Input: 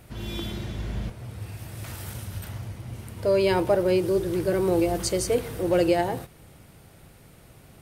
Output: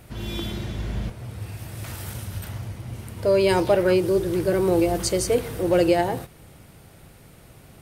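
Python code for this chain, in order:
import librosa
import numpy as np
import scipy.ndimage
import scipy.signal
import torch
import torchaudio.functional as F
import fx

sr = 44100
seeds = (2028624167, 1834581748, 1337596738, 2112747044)

y = fx.peak_eq(x, sr, hz=fx.line((3.48, 10000.0), (3.93, 1200.0)), db=12.0, octaves=0.55, at=(3.48, 3.93), fade=0.02)
y = y * librosa.db_to_amplitude(2.5)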